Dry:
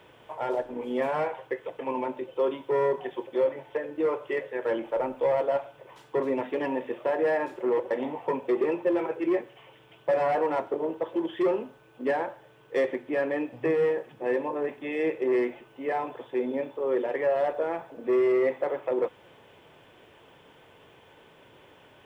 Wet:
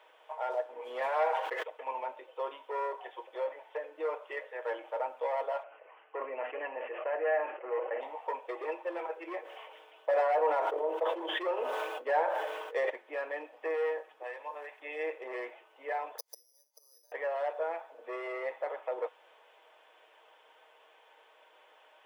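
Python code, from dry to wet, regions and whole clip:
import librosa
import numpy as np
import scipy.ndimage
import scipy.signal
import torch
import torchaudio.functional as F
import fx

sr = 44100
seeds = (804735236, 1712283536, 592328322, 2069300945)

y = fx.chain(x, sr, fx.leveller(passes=1),
    fx.sustainer(db_per_s=35.0), at=(0.85, 1.63))
y = fx.chain(y, sr, fx.steep_lowpass(hz=3000.0, slope=96),
    fx.notch(hz=930.0, q=10.0),
    fx.sustainer(db_per_s=52.0), at=(5.63, 8.01))
y = fx.chain(y, sr, fx.highpass(hz=220.0, slope=12),
    fx.peak_eq(hz=470.0, db=5.0, octaves=1.3),
    fx.sustainer(db_per_s=28.0), at=(9.42, 12.9))
y = fx.chain(y, sr, fx.highpass(hz=1300.0, slope=6),
    fx.band_squash(depth_pct=100), at=(14.23, 14.8))
y = fx.chain(y, sr, fx.gate_flip(shuts_db=-29.0, range_db=-38),
    fx.peak_eq(hz=2400.0, db=-13.5, octaves=0.29),
    fx.resample_bad(factor=8, down='none', up='zero_stuff'), at=(16.18, 17.12))
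y = scipy.signal.sosfilt(scipy.signal.butter(4, 590.0, 'highpass', fs=sr, output='sos'), y)
y = fx.tilt_eq(y, sr, slope=-1.5)
y = y + 0.43 * np.pad(y, (int(6.4 * sr / 1000.0), 0))[:len(y)]
y = F.gain(torch.from_numpy(y), -4.0).numpy()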